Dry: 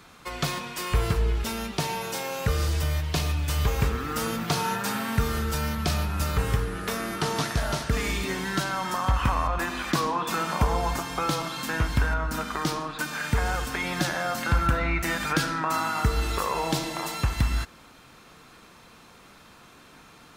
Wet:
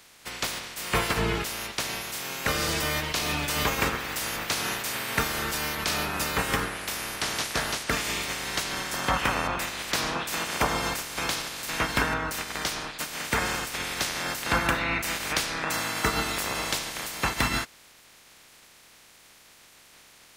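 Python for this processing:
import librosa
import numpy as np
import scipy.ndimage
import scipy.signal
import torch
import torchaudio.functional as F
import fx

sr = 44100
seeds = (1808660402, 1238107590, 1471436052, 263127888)

y = fx.spec_clip(x, sr, under_db=22)
y = fx.peak_eq(y, sr, hz=2100.0, db=2.5, octaves=0.77)
y = F.gain(torch.from_numpy(y), -3.0).numpy()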